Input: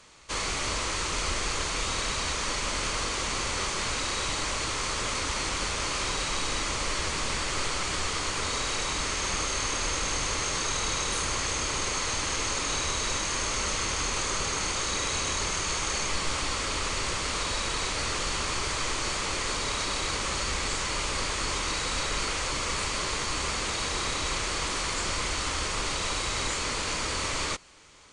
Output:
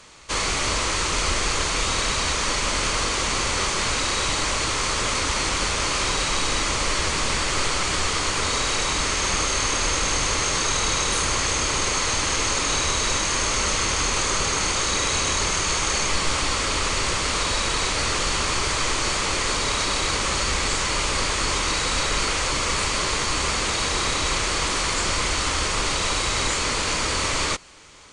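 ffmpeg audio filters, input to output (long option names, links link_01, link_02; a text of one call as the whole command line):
ffmpeg -i in.wav -af "volume=6.5dB" out.wav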